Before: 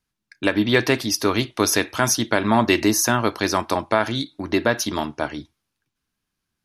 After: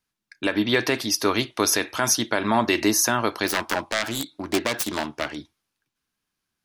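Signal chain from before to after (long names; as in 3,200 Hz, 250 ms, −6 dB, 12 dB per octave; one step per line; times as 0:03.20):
0:03.47–0:05.36: phase distortion by the signal itself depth 0.7 ms
low-shelf EQ 210 Hz −8 dB
brickwall limiter −7.5 dBFS, peak gain reduction 5.5 dB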